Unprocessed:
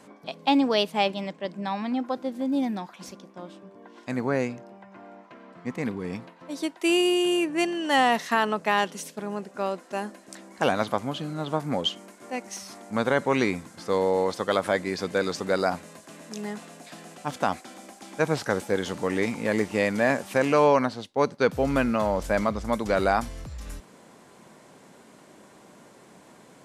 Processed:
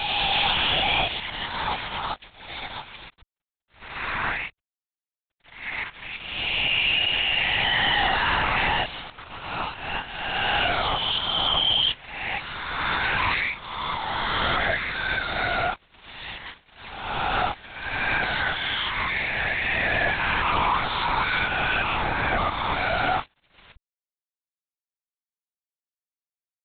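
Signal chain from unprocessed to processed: spectral swells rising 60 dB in 1.98 s; Chebyshev high-pass 610 Hz, order 8; tilt shelf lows -8.5 dB, about 1200 Hz; pre-echo 0.196 s -24 dB; fuzz box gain 29 dB, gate -33 dBFS; LPC vocoder at 8 kHz whisper; gain -6 dB

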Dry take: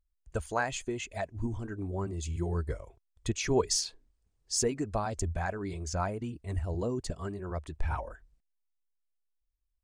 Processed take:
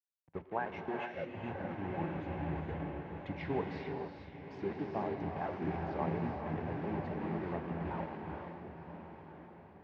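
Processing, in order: trilling pitch shifter -3 st, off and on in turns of 0.218 s; compressor 3:1, threshold -43 dBFS, peak gain reduction 16 dB; requantised 8-bit, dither none; speaker cabinet 140–2200 Hz, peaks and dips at 160 Hz +7 dB, 830 Hz +6 dB, 1300 Hz -7 dB; diffused feedback echo 1.018 s, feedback 60%, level -6 dB; on a send at -1 dB: reverb, pre-delay 3 ms; on the sum: three-band expander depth 70%; gain +3.5 dB

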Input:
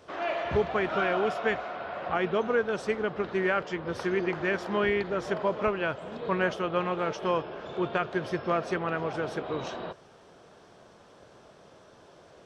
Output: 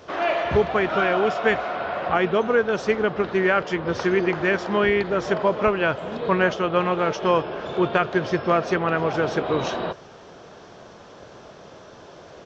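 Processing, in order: in parallel at +2.5 dB: vocal rider within 4 dB 0.5 s; on the sum: downsampling 16000 Hz

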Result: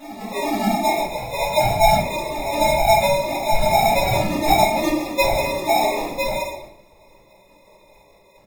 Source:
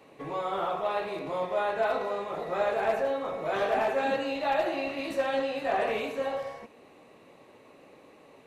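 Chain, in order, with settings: sine-wave speech; tilt shelf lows -9 dB; notch 2300 Hz, Q 25; comb 1.4 ms, depth 48%; sample-and-hold 29×; reverse echo 0.427 s -12.5 dB; shoebox room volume 67 m³, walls mixed, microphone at 2.3 m; gain -1 dB

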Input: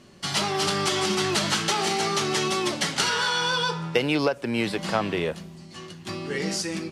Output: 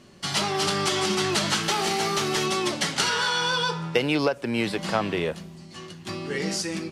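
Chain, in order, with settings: 1.63–2.46 CVSD 64 kbps

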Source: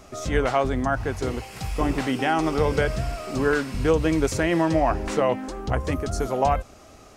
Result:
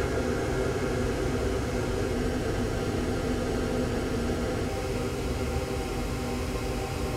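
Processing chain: Paulstretch 28×, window 1.00 s, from 1.25; spectral freeze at 2.17, 2.52 s

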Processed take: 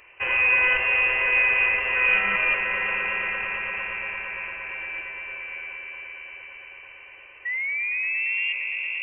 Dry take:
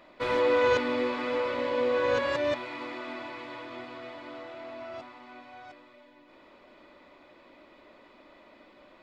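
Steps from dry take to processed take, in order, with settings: painted sound fall, 7.45–8.53, 210–1100 Hz -31 dBFS; swelling echo 0.115 s, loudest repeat 5, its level -10.5 dB; inverted band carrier 3000 Hz; gain +3.5 dB

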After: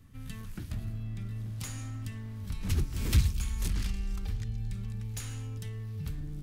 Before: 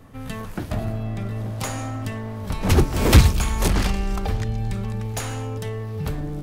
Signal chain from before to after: passive tone stack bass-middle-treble 6-0-2; in parallel at +2 dB: compressor, threshold -42 dBFS, peak gain reduction 20.5 dB

